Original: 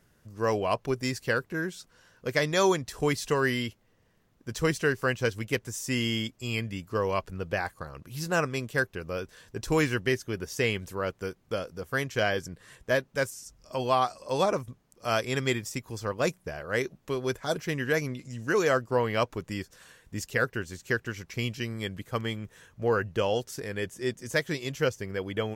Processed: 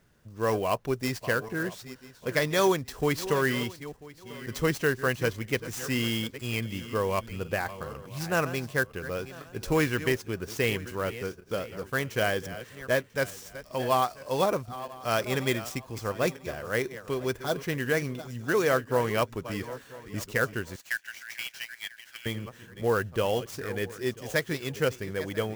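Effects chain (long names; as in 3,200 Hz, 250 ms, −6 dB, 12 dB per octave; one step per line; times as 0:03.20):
feedback delay that plays each chunk backwards 496 ms, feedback 46%, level −14 dB
0:20.76–0:22.26: Butterworth high-pass 1,500 Hz 72 dB per octave
converter with an unsteady clock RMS 0.02 ms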